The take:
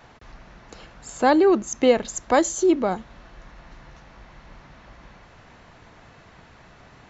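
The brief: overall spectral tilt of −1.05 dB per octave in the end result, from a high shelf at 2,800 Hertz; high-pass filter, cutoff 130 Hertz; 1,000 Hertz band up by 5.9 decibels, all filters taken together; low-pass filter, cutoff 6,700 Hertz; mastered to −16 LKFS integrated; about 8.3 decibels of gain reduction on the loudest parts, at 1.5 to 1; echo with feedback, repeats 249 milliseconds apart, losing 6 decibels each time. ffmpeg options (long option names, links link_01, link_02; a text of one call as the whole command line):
ffmpeg -i in.wav -af "highpass=130,lowpass=6700,equalizer=frequency=1000:width_type=o:gain=9,highshelf=frequency=2800:gain=-8.5,acompressor=threshold=-32dB:ratio=1.5,aecho=1:1:249|498|747|996|1245|1494:0.501|0.251|0.125|0.0626|0.0313|0.0157,volume=9.5dB" out.wav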